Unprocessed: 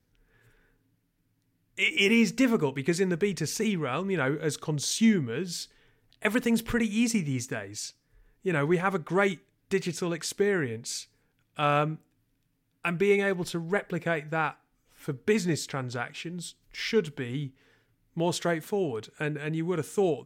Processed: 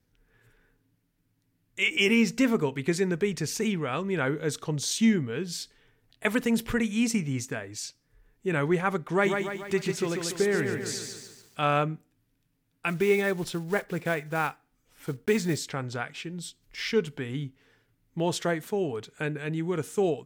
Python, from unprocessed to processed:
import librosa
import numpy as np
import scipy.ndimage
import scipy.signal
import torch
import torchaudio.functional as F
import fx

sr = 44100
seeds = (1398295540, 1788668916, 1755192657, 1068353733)

y = fx.echo_crushed(x, sr, ms=144, feedback_pct=55, bits=9, wet_db=-5, at=(9.09, 11.62))
y = fx.block_float(y, sr, bits=5, at=(12.89, 15.59))